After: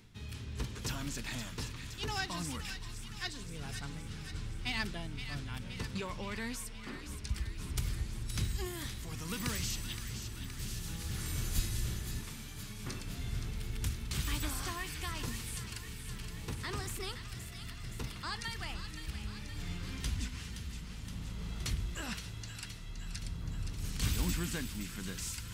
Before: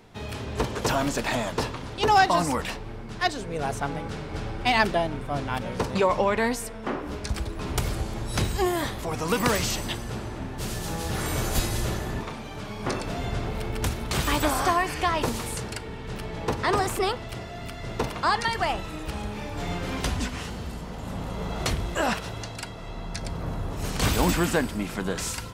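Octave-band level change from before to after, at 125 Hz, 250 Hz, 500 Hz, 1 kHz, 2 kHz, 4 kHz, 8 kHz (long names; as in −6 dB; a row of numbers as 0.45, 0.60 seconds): −8.0, −13.0, −21.0, −21.0, −13.0, −9.0, −7.5 decibels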